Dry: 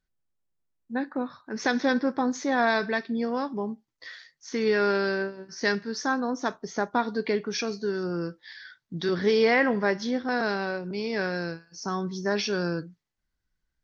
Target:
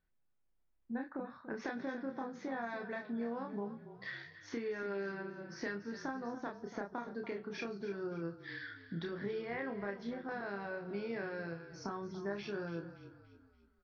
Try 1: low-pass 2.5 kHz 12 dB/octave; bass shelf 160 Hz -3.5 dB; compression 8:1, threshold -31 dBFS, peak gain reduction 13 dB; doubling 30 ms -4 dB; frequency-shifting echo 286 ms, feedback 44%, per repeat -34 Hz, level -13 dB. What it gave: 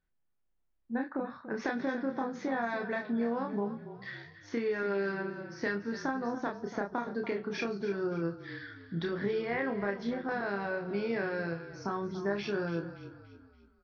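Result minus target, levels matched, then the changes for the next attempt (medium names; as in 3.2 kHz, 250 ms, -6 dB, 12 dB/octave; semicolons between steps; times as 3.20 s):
compression: peak gain reduction -7.5 dB
change: compression 8:1, threshold -39.5 dBFS, peak gain reduction 20.5 dB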